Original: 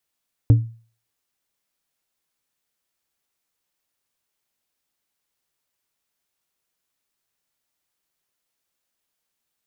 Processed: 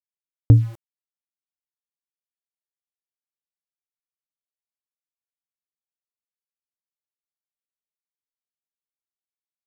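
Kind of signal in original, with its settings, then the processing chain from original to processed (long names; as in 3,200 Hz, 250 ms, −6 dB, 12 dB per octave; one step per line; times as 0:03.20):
struck glass plate, lowest mode 114 Hz, decay 0.40 s, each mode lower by 11 dB, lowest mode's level −6 dB
in parallel at −1 dB: brickwall limiter −12.5 dBFS
on the sum: centre clipping without the shift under −38.5 dBFS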